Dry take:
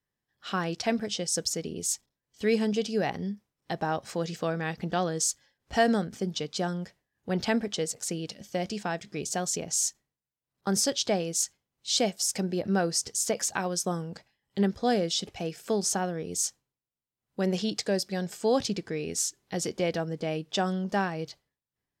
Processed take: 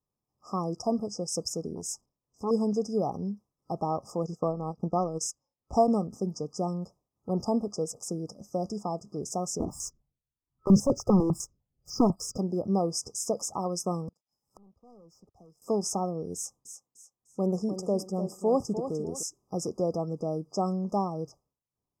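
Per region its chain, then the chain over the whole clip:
0:01.75–0:02.51: high-shelf EQ 11,000 Hz −5 dB + saturating transformer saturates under 1,200 Hz
0:04.23–0:05.88: high-shelf EQ 9,600 Hz −5.5 dB + transient designer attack +3 dB, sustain −11 dB
0:09.60–0:12.38: spectral tilt −3.5 dB per octave + leveller curve on the samples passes 2 + step-sequenced phaser 10 Hz 550–4,200 Hz
0:14.08–0:15.62: leveller curve on the samples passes 3 + gate with flip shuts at −26 dBFS, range −40 dB + multiband upward and downward compressor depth 70%
0:16.35–0:19.23: parametric band 4,200 Hz −12 dB 0.73 octaves + feedback echo with a high-pass in the loop 300 ms, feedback 37%, high-pass 190 Hz, level −9 dB
whole clip: brick-wall band-stop 1,300–4,900 Hz; high-shelf EQ 5,200 Hz −7.5 dB

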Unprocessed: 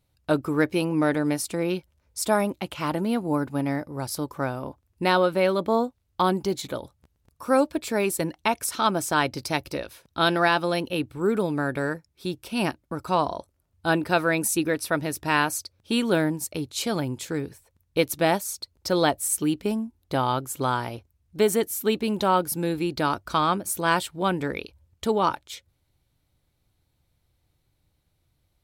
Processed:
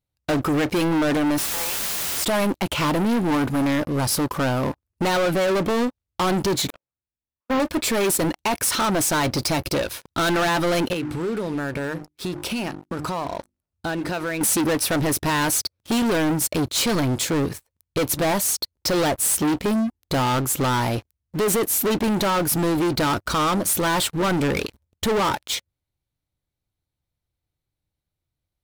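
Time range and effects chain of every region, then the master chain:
0:01.38–0:02.24: four-pole ladder high-pass 770 Hz, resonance 55% + bit-depth reduction 6 bits, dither triangular + power curve on the samples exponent 1.4
0:06.70–0:07.60: linear delta modulator 16 kbit/s, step −32.5 dBFS + noise gate −25 dBFS, range −47 dB
0:10.93–0:14.41: mains-hum notches 50/100/150/200/250/300/350 Hz + downward compressor 5 to 1, threshold −38 dBFS + low-pass filter 11,000 Hz
whole clip: brickwall limiter −14.5 dBFS; leveller curve on the samples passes 5; level −3 dB

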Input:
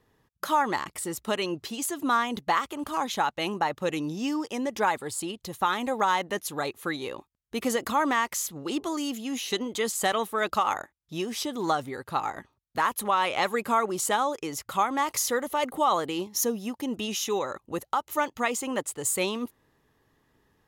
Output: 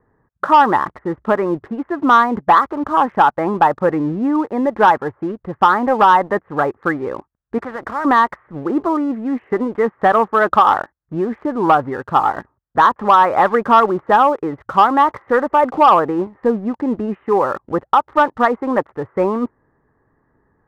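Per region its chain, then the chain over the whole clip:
0:07.58–0:08.05: low-shelf EQ 330 Hz −7.5 dB + every bin compressed towards the loudest bin 2 to 1
whole clip: Butterworth low-pass 1,800 Hz 48 dB per octave; dynamic equaliser 950 Hz, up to +4 dB, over −37 dBFS, Q 1.1; leveller curve on the samples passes 1; level +8 dB

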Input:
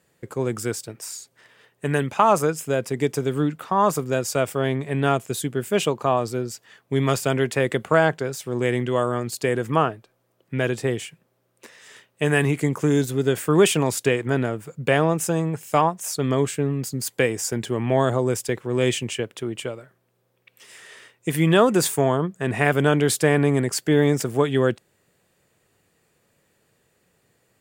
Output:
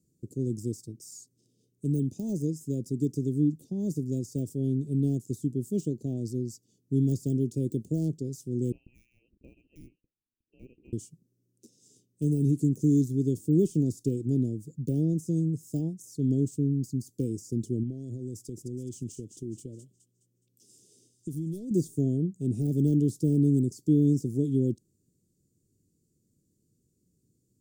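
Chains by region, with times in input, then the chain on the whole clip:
0:08.72–0:10.93: high-pass filter 800 Hz 6 dB per octave + high-frequency loss of the air 270 metres + voice inversion scrambler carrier 2,900 Hz
0:17.83–0:21.71: hard clipping −9.5 dBFS + downward compressor 10 to 1, threshold −26 dBFS + delay with a high-pass on its return 209 ms, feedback 42%, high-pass 3,200 Hz, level −9 dB
whole clip: high-shelf EQ 5,900 Hz −10.5 dB; de-essing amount 90%; Chebyshev band-stop filter 310–5,900 Hz, order 3; level −1 dB

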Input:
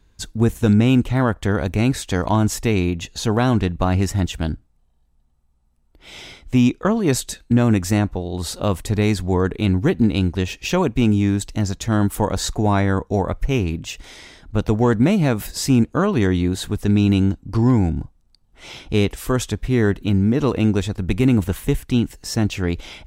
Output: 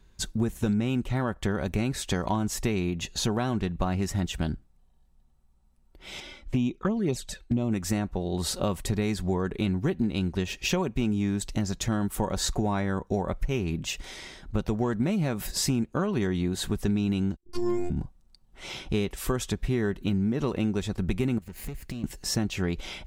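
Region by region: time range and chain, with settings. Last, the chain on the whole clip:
0:06.20–0:07.72: high-shelf EQ 5,700 Hz −7.5 dB + flanger swept by the level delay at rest 4 ms, full sweep at −13 dBFS
0:17.36–0:17.90: high-shelf EQ 4,300 Hz +6 dB + phases set to zero 354 Hz + multiband upward and downward expander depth 70%
0:21.38–0:22.04: lower of the sound and its delayed copy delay 0.42 ms + downward compressor 8 to 1, threshold −31 dBFS
whole clip: comb filter 5.3 ms, depth 31%; downward compressor 5 to 1, threshold −22 dBFS; level −1.5 dB

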